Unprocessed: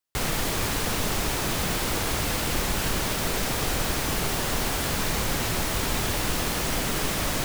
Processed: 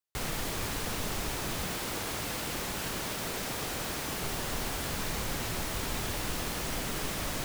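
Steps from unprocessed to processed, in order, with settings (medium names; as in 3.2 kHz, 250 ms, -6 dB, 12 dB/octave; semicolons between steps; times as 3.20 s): 1.66–4.23 s: bass shelf 66 Hz -12 dB; trim -7.5 dB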